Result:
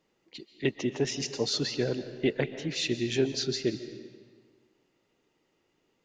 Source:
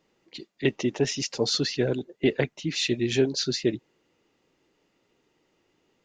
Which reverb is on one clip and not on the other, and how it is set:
comb and all-pass reverb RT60 1.6 s, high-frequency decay 0.85×, pre-delay 100 ms, DRR 11 dB
level −4 dB

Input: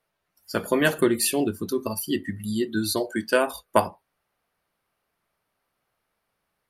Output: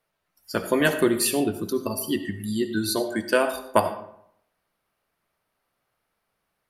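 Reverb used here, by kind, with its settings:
comb and all-pass reverb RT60 0.7 s, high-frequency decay 0.6×, pre-delay 35 ms, DRR 10 dB

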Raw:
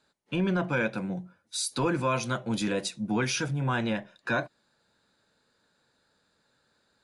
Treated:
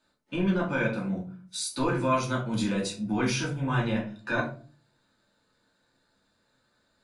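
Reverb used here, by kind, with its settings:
rectangular room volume 250 cubic metres, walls furnished, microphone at 2.6 metres
level −5 dB

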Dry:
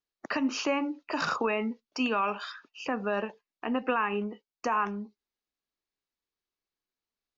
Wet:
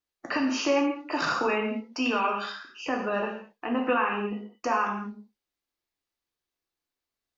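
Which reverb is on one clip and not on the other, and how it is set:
reverb whose tail is shaped and stops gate 240 ms falling, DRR −0.5 dB

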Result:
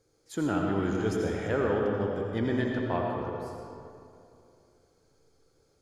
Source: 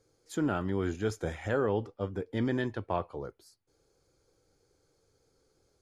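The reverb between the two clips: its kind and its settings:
comb and all-pass reverb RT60 2.6 s, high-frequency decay 0.6×, pre-delay 45 ms, DRR −0.5 dB

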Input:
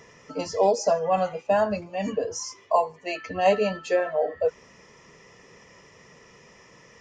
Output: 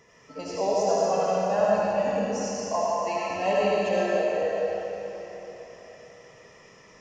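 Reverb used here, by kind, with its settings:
comb and all-pass reverb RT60 3.7 s, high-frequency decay 0.95×, pre-delay 35 ms, DRR −6.5 dB
level −7.5 dB

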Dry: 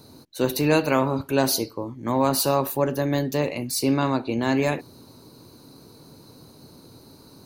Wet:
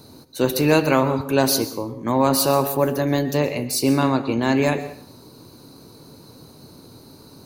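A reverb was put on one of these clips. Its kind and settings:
dense smooth reverb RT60 0.54 s, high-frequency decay 0.85×, pre-delay 110 ms, DRR 12.5 dB
level +3 dB

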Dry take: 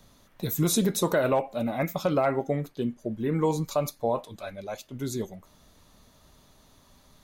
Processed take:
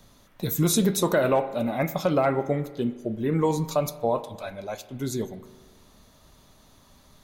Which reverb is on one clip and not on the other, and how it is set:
spring reverb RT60 1.4 s, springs 37 ms, chirp 40 ms, DRR 13 dB
level +2 dB

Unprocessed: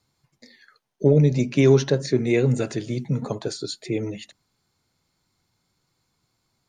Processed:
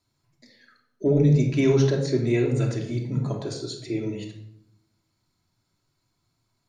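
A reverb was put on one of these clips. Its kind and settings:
rectangular room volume 2,000 cubic metres, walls furnished, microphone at 2.9 metres
level −6 dB

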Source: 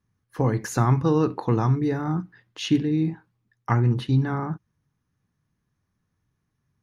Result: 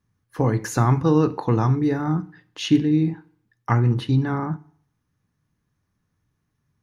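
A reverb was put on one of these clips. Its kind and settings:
feedback delay network reverb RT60 0.58 s, low-frequency decay 0.9×, high-frequency decay 0.9×, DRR 15.5 dB
level +2 dB

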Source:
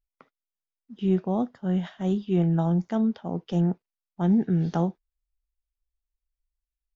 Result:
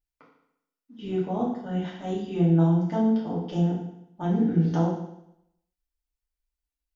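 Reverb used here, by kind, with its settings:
feedback delay network reverb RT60 0.78 s, low-frequency decay 1×, high-frequency decay 1×, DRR −6 dB
level −6 dB

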